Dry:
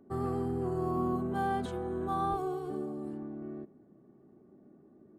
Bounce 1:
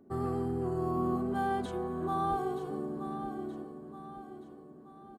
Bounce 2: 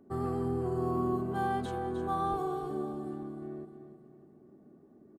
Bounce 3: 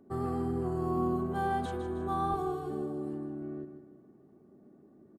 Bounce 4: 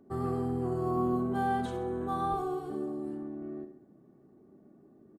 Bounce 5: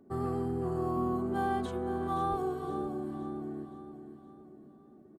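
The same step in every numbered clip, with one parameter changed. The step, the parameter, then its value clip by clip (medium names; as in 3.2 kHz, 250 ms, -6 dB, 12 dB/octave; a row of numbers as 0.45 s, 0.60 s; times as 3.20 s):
feedback delay, time: 925 ms, 306 ms, 157 ms, 65 ms, 519 ms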